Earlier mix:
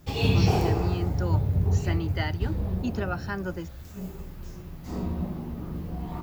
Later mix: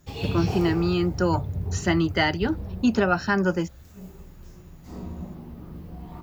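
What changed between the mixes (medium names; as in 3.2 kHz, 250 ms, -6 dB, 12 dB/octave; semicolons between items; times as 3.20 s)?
speech +10.0 dB; background -5.5 dB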